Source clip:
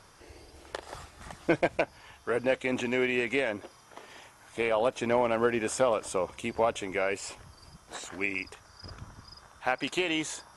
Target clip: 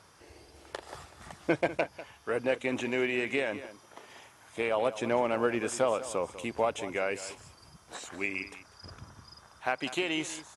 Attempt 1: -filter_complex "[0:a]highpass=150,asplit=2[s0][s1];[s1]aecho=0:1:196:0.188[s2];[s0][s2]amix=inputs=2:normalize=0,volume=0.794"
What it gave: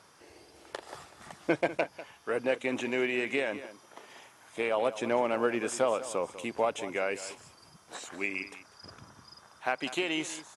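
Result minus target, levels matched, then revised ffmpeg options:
125 Hz band -4.0 dB
-filter_complex "[0:a]highpass=67,asplit=2[s0][s1];[s1]aecho=0:1:196:0.188[s2];[s0][s2]amix=inputs=2:normalize=0,volume=0.794"

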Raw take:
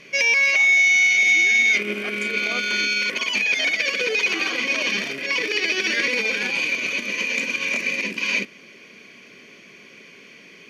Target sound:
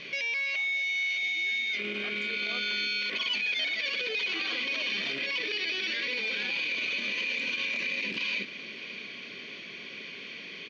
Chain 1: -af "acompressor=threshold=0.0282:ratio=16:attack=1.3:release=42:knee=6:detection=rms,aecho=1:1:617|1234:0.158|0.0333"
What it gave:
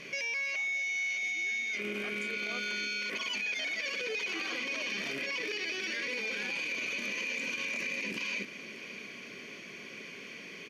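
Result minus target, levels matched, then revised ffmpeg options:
4 kHz band -3.5 dB
-af "acompressor=threshold=0.0282:ratio=16:attack=1.3:release=42:knee=6:detection=rms,lowpass=f=3800:t=q:w=3.3,aecho=1:1:617|1234:0.158|0.0333"

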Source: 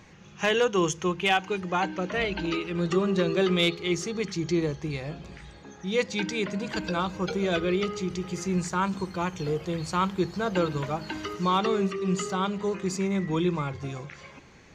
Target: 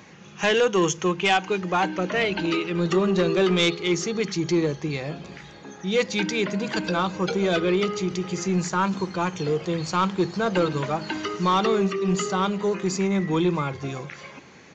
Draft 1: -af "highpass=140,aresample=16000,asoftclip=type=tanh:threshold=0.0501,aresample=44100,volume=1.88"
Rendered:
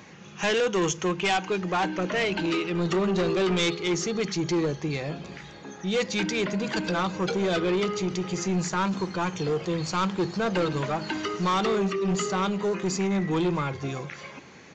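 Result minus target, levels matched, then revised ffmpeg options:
saturation: distortion +8 dB
-af "highpass=140,aresample=16000,asoftclip=type=tanh:threshold=0.119,aresample=44100,volume=1.88"

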